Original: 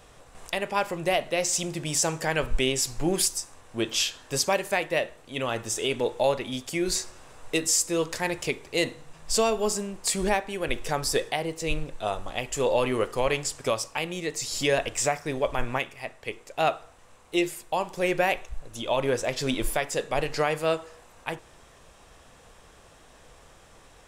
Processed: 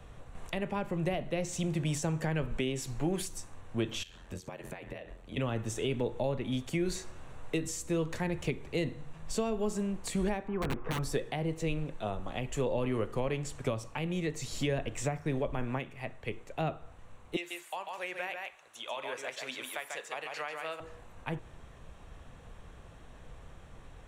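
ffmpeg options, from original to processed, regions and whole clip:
-filter_complex "[0:a]asettb=1/sr,asplit=3[s0][s1][s2];[s0]atrim=end=4.034[s3];[s1]atrim=start=4.03:end=5.37,asetpts=PTS-STARTPTS,afade=t=in:d=0.004:c=qsin,afade=t=out:st=1.336:d=0.004:c=qsin,bandreject=f=60:t=h:w=6,bandreject=f=120:t=h:w=6,bandreject=f=180:t=h:w=6,bandreject=f=240:t=h:w=6,bandreject=f=300:t=h:w=6,bandreject=f=360:t=h:w=6,bandreject=f=420:t=h:w=6,acompressor=threshold=0.02:ratio=12:attack=3.2:release=140:knee=1:detection=peak,aeval=exprs='val(0)*sin(2*PI*43*n/s)':c=same[s4];[s2]atrim=start=5.366[s5];[s3][s4]acrossfade=d=0.004:c1=hsin:c2=qsin[s6];[s6][s5]acrossfade=d=0.004:c1=qsin:c2=hsin,asettb=1/sr,asplit=3[s7][s8][s9];[s7]atrim=end=10.484[s10];[s8]atrim=start=10.48:end=10.99,asetpts=PTS-STARTPTS,afade=t=in:d=0.004:c=qsin,afade=t=out:st=0.506:d=0.004:c=qsin,lowpass=f=1200:t=q:w=3.5,aeval=exprs='(mod(10*val(0)+1,2)-1)/10':c=same,bandreject=f=590:w=10[s11];[s9]atrim=start=10.986[s12];[s10][s11]acrossfade=d=0.004:c1=hsin:c2=qsin[s13];[s13][s12]acrossfade=d=0.004:c1=qsin:c2=hsin,asettb=1/sr,asplit=3[s14][s15][s16];[s14]atrim=end=17.364[s17];[s15]atrim=start=17.36:end=20.8,asetpts=PTS-STARTPTS,afade=t=in:d=0.004:c=qsin,afade=t=out:st=3.436:d=0.004:c=qsin,highpass=1000,aecho=1:1:143:0.562,atrim=end_sample=151704[s18];[s16]atrim=start=20.796[s19];[s17][s18]acrossfade=d=0.004:c1=hsin:c2=qsin[s20];[s20][s19]acrossfade=d=0.004:c1=qsin:c2=hsin,bass=f=250:g=10,treble=f=4000:g=-8,acrossover=split=140|420[s21][s22][s23];[s21]acompressor=threshold=0.0178:ratio=4[s24];[s22]acompressor=threshold=0.0355:ratio=4[s25];[s23]acompressor=threshold=0.0224:ratio=4[s26];[s24][s25][s26]amix=inputs=3:normalize=0,bandreject=f=5000:w=7,volume=0.708"

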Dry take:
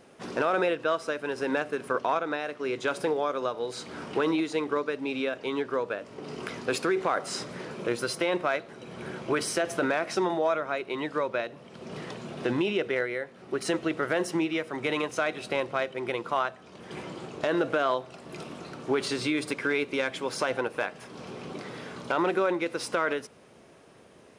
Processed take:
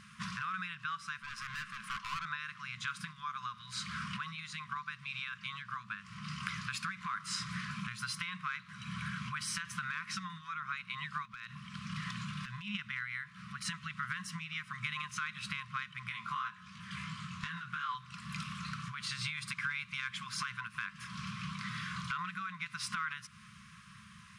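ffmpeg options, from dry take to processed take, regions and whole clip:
-filter_complex "[0:a]asettb=1/sr,asplit=3[s0][s1][s2];[s0]atrim=end=1.194[s3];[s1]atrim=start=1.19:end=2.25,asetpts=PTS-STARTPTS,afade=t=in:d=0.004:c=qsin,afade=t=out:st=1.056:d=0.004:c=qsin,highpass=f=210:w=0.5412,highpass=f=210:w=1.3066,highshelf=f=3500:g=-3,aeval=exprs='(tanh(50.1*val(0)+0.1)-tanh(0.1))/50.1':c=same[s4];[s2]atrim=start=2.246[s5];[s3][s4]acrossfade=d=0.004:c1=hsin:c2=qsin[s6];[s6][s5]acrossfade=d=0.004:c1=qsin:c2=hsin,asettb=1/sr,asplit=3[s7][s8][s9];[s7]atrim=end=11.254[s10];[s8]atrim=start=11.25:end=12.75,asetpts=PTS-STARTPTS,afade=t=in:d=0.004:c=qsin,afade=t=out:st=1.496:d=0.004:c=qsin,highpass=40,acompressor=threshold=0.0178:ratio=16:attack=3.2:release=140:knee=1:detection=peak,volume=37.6,asoftclip=hard,volume=0.0266[s11];[s9]atrim=start=12.746[s12];[s10][s11]acrossfade=d=0.004:c1=hsin:c2=qsin[s13];[s13][s12]acrossfade=d=0.004:c1=qsin:c2=hsin,asettb=1/sr,asplit=3[s14][s15][s16];[s14]atrim=end=16.094[s17];[s15]atrim=start=16.09:end=17.95,asetpts=PTS-STARTPTS,afade=t=in:d=0.004:c=qsin,afade=t=out:st=1.856:d=0.004:c=qsin,bandreject=f=210.2:t=h:w=4,bandreject=f=420.4:t=h:w=4,bandreject=f=630.6:t=h:w=4,bandreject=f=840.8:t=h:w=4,bandreject=f=1051:t=h:w=4,bandreject=f=1261.2:t=h:w=4,bandreject=f=1471.4:t=h:w=4,bandreject=f=1681.6:t=h:w=4,bandreject=f=1891.8:t=h:w=4,bandreject=f=2102:t=h:w=4,bandreject=f=2312.2:t=h:w=4,bandreject=f=2522.4:t=h:w=4,bandreject=f=2732.6:t=h:w=4,bandreject=f=2942.8:t=h:w=4,bandreject=f=3153:t=h:w=4,bandreject=f=3363.2:t=h:w=4,bandreject=f=3573.4:t=h:w=4,bandreject=f=3783.6:t=h:w=4,bandreject=f=3993.8:t=h:w=4,bandreject=f=4204:t=h:w=4,bandreject=f=4414.2:t=h:w=4,bandreject=f=4624.4:t=h:w=4,bandreject=f=4834.6:t=h:w=4,bandreject=f=5044.8:t=h:w=4,bandreject=f=5255:t=h:w=4,bandreject=f=5465.2:t=h:w=4,bandreject=f=5675.4:t=h:w=4,bandreject=f=5885.6:t=h:w=4,bandreject=f=6095.8:t=h:w=4,bandreject=f=6306:t=h:w=4,bandreject=f=6516.2:t=h:w=4,bandreject=f=6726.4:t=h:w=4,bandreject=f=6936.6:t=h:w=4,bandreject=f=7146.8:t=h:w=4,bandreject=f=7357:t=h:w=4,bandreject=f=7567.2:t=h:w=4,bandreject=f=7777.4:t=h:w=4,bandreject=f=7987.6:t=h:w=4,flanger=delay=18:depth=4.6:speed=2.8[s18];[s16]atrim=start=17.946[s19];[s17][s18]acrossfade=d=0.004:c1=hsin:c2=qsin[s20];[s20][s19]acrossfade=d=0.004:c1=qsin:c2=hsin,acompressor=threshold=0.0141:ratio=4,highshelf=f=8000:g=-6.5,afftfilt=real='re*(1-between(b*sr/4096,220,1000))':imag='im*(1-between(b*sr/4096,220,1000))':win_size=4096:overlap=0.75,volume=1.78"

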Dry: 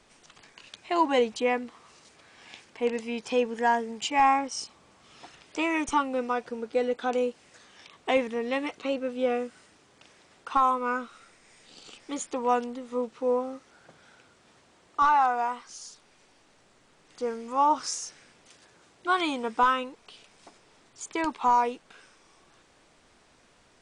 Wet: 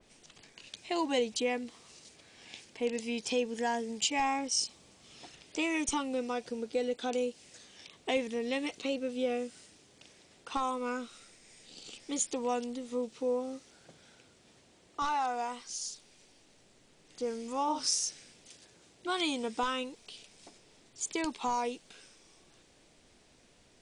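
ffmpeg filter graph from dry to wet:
-filter_complex "[0:a]asettb=1/sr,asplit=3[s0][s1][s2];[s0]atrim=end=17.634[s3];[s1]atrim=start=17.63:end=18.04,asetpts=PTS-STARTPTS,afade=t=in:d=0.004:c=qsin,afade=t=out:st=0.406:d=0.004:c=qsin,equalizer=f=6900:w=3.6:g=-6.5,asplit=2[s4][s5];[s5]adelay=47,volume=0.422[s6];[s4][s6]amix=inputs=2:normalize=0,atrim=end_sample=18081[s7];[s2]atrim=start=18.036[s8];[s3][s7]acrossfade=d=0.004:c1=hsin:c2=qsin[s9];[s9][s8]acrossfade=d=0.004:c1=qsin:c2=hsin,equalizer=f=1200:w=1:g=-9.5,acompressor=threshold=0.02:ratio=1.5,adynamicequalizer=threshold=0.00251:dfrequency=2900:dqfactor=0.7:tfrequency=2900:tqfactor=0.7:attack=5:release=100:ratio=0.375:range=3.5:mode=boostabove:tftype=highshelf"

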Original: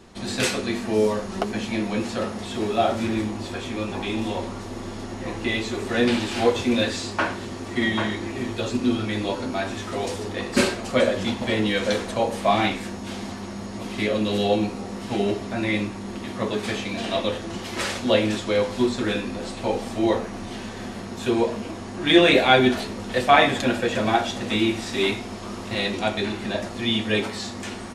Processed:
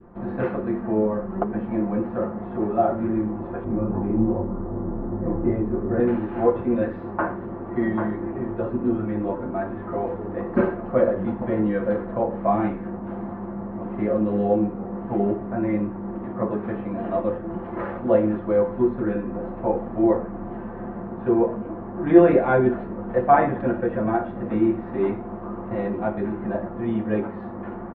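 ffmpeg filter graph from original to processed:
-filter_complex "[0:a]asettb=1/sr,asplit=3[s0][s1][s2];[s0]atrim=end=3.644[s3];[s1]atrim=start=3.64:end=6,asetpts=PTS-STARTPTS,afade=t=in:d=0.004:c=qsin,afade=t=out:st=2.356:d=0.004:c=qsin,lowpass=1900,lowshelf=f=420:g=10.5,flanger=delay=19.5:depth=7.5:speed=2.6[s4];[s2]atrim=start=5.996[s5];[s3][s4]acrossfade=d=0.004:c1=hsin:c2=qsin[s6];[s6][s5]acrossfade=d=0.004:c1=qsin:c2=hsin,lowpass=f=1300:w=0.5412,lowpass=f=1300:w=1.3066,adynamicequalizer=threshold=0.0178:dfrequency=790:dqfactor=1:tfrequency=790:tqfactor=1:attack=5:release=100:ratio=0.375:range=3:mode=cutabove:tftype=bell,aecho=1:1:5.8:0.4,volume=1.12"

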